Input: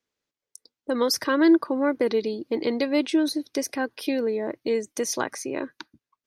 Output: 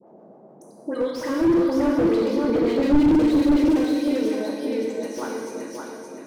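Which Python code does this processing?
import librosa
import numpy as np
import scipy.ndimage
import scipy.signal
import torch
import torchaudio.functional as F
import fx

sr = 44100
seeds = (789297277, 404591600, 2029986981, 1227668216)

p1 = fx.doppler_pass(x, sr, speed_mps=6, closest_m=4.5, pass_at_s=2.67)
p2 = fx.level_steps(p1, sr, step_db=20)
p3 = p1 + (p2 * librosa.db_to_amplitude(0.5))
p4 = fx.small_body(p3, sr, hz=(290.0, 490.0, 910.0, 2300.0), ring_ms=35, db=7)
p5 = fx.dmg_noise_band(p4, sr, seeds[0], low_hz=160.0, high_hz=730.0, level_db=-48.0)
p6 = fx.dispersion(p5, sr, late='highs', ms=76.0, hz=2000.0)
p7 = fx.harmonic_tremolo(p6, sr, hz=6.8, depth_pct=70, crossover_hz=530.0)
p8 = p7 + fx.echo_feedback(p7, sr, ms=568, feedback_pct=37, wet_db=-5, dry=0)
p9 = fx.rev_gated(p8, sr, seeds[1], gate_ms=480, shape='falling', drr_db=-1.5)
y = fx.slew_limit(p9, sr, full_power_hz=60.0)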